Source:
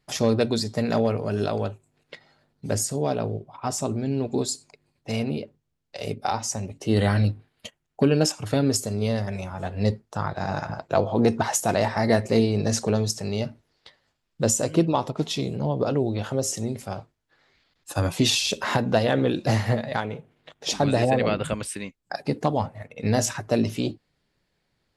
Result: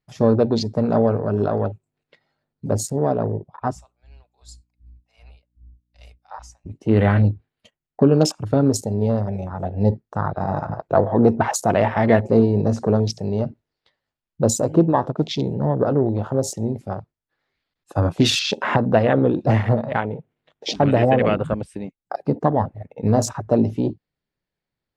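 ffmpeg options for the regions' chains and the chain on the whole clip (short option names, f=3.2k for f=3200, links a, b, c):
-filter_complex "[0:a]asettb=1/sr,asplit=3[a][b][c];[a]atrim=end=3.754[d];[b]atrim=start=3.75:end=6.66,asetpts=PTS-STARTPTS,afade=t=in:d=0.004:c=qsin,afade=t=out:st=2.906:d=0.004:c=qsin,highpass=f=750:w=0.5412,highpass=f=750:w=1.3066,aeval=exprs='val(0)+0.00562*(sin(2*PI*60*n/s)+sin(2*PI*2*60*n/s)/2+sin(2*PI*3*60*n/s)/3+sin(2*PI*4*60*n/s)/4+sin(2*PI*5*60*n/s)/5)':c=same,aeval=exprs='val(0)*pow(10,-18*(0.5-0.5*cos(2*PI*2.6*n/s))/20)':c=same[e];[c]atrim=start=6.656[f];[d][e]acrossfade=d=0.004:c1=hsin:c2=qsin[g];[g][f]acrossfade=d=0.004:c1=qsin:c2=hsin,afwtdn=0.0251,highshelf=f=6.1k:g=-9,volume=5dB"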